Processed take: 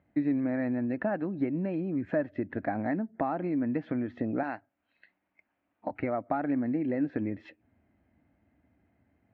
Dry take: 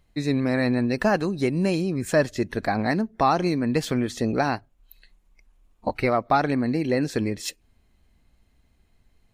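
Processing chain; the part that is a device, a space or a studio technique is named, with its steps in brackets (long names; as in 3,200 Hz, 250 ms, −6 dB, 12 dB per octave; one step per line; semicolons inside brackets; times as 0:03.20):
bass amplifier (downward compressor 3 to 1, threshold −31 dBFS, peak gain reduction 12.5 dB; loudspeaker in its box 86–2,000 Hz, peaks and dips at 140 Hz −5 dB, 290 Hz +8 dB, 420 Hz −6 dB, 630 Hz +4 dB, 1,100 Hz −7 dB)
0:04.43–0:05.91: spectral tilt +3.5 dB per octave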